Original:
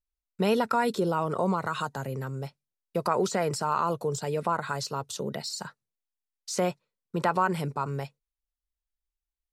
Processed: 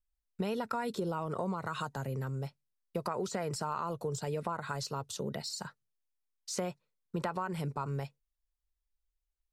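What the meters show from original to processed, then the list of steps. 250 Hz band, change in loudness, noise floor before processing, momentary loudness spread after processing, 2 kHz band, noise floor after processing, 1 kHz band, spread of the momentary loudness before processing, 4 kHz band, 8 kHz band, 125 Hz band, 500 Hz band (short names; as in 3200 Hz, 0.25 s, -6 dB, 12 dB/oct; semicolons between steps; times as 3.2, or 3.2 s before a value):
-7.0 dB, -8.0 dB, under -85 dBFS, 6 LU, -9.0 dB, under -85 dBFS, -9.0 dB, 11 LU, -6.0 dB, -5.5 dB, -4.0 dB, -8.5 dB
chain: low shelf 87 Hz +11 dB; compressor, threshold -26 dBFS, peak gain reduction 8 dB; gain -4.5 dB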